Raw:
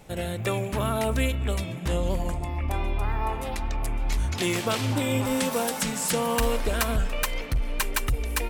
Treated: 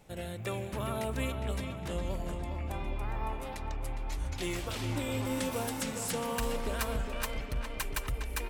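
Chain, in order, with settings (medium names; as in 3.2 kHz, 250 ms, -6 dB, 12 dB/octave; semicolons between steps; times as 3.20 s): 3.72–4.76 s: comb of notches 220 Hz; filtered feedback delay 409 ms, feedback 60%, low-pass 4.4 kHz, level -7 dB; trim -9 dB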